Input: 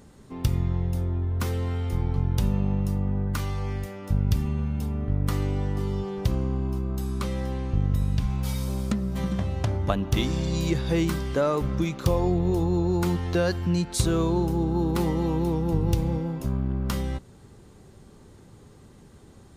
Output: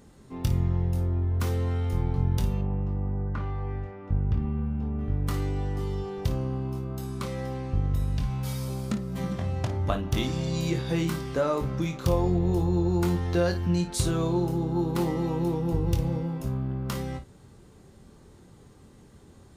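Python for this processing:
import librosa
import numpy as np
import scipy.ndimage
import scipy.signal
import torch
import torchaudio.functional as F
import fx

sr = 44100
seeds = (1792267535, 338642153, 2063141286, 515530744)

y = fx.lowpass(x, sr, hz=1600.0, slope=12, at=(2.61, 4.99))
y = fx.room_early_taps(y, sr, ms=(23, 55), db=(-7.5, -12.0))
y = y * 10.0 ** (-3.0 / 20.0)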